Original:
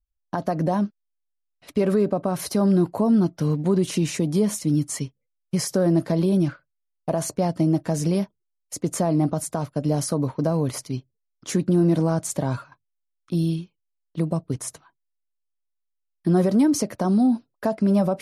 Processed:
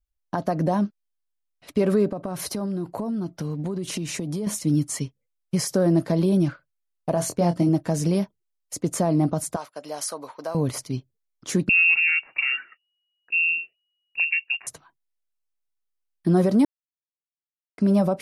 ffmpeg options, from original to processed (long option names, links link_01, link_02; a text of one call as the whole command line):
ffmpeg -i in.wav -filter_complex "[0:a]asettb=1/sr,asplit=3[link_01][link_02][link_03];[link_01]atrim=end=2.094[link_04];[link_02]atrim=start=2.09:end=4.47,asetpts=PTS-STARTPTS,afade=type=in:duration=0.004:curve=qsin,afade=type=out:start_time=2.376:duration=0.004:curve=qsin,acompressor=threshold=-25dB:ratio=6:attack=3.2:release=140:knee=1:detection=peak[link_05];[link_03]atrim=start=4.466[link_06];[link_04][link_05]acrossfade=duration=0.004:curve1=hsin:curve2=qsin[link_07];[link_07][link_06]acrossfade=duration=0.004:curve1=qsin:curve2=hsin,asettb=1/sr,asplit=3[link_08][link_09][link_10];[link_08]atrim=end=7.144[link_11];[link_09]atrim=start=7.14:end=7.69,asetpts=PTS-STARTPTS,afade=type=in:duration=0.004:curve=qsin,afade=type=out:start_time=0.546:duration=0.004:curve=qsin,asplit=2[link_12][link_13];[link_13]adelay=23,volume=-6.5dB[link_14];[link_12][link_14]amix=inputs=2:normalize=0,atrim=end_sample=24255[link_15];[link_10]atrim=start=7.686[link_16];[link_11][link_15]acrossfade=duration=0.004:curve1=hsin:curve2=qsin[link_17];[link_17][link_16]acrossfade=duration=0.004:curve1=qsin:curve2=hsin,asettb=1/sr,asplit=3[link_18][link_19][link_20];[link_18]atrim=end=9.564[link_21];[link_19]atrim=start=9.56:end=10.55,asetpts=PTS-STARTPTS,afade=type=in:duration=0.004:curve=qsin,afade=type=out:start_time=0.986:duration=0.004:curve=qsin,highpass=780[link_22];[link_20]atrim=start=10.546[link_23];[link_21][link_22]acrossfade=duration=0.004:curve1=hsin:curve2=qsin[link_24];[link_24][link_23]acrossfade=duration=0.004:curve1=qsin:curve2=hsin,asettb=1/sr,asplit=3[link_25][link_26][link_27];[link_25]atrim=end=11.694[link_28];[link_26]atrim=start=11.69:end=14.67,asetpts=PTS-STARTPTS,afade=type=in:duration=0.004:curve=qsin,afade=type=out:start_time=2.976:duration=0.004:curve=qsin,lowpass=frequency=2500:width_type=q:width=0.5098,lowpass=frequency=2500:width_type=q:width=0.6013,lowpass=frequency=2500:width_type=q:width=0.9,lowpass=frequency=2500:width_type=q:width=2.563,afreqshift=-2900[link_29];[link_27]atrim=start=14.666[link_30];[link_28][link_29]acrossfade=duration=0.004:curve1=hsin:curve2=qsin[link_31];[link_31][link_30]acrossfade=duration=0.004:curve1=qsin:curve2=hsin,asplit=3[link_32][link_33][link_34];[link_32]atrim=end=16.65,asetpts=PTS-STARTPTS,afade=type=out:start_time=16.646:duration=0.004:curve=hsin[link_35];[link_33]atrim=start=16.65:end=17.78,asetpts=PTS-STARTPTS,volume=0[link_36];[link_34]atrim=start=17.78,asetpts=PTS-STARTPTS,afade=type=in:duration=0.004:curve=hsin[link_37];[link_35][link_36][link_37]concat=n=3:v=0:a=1" out.wav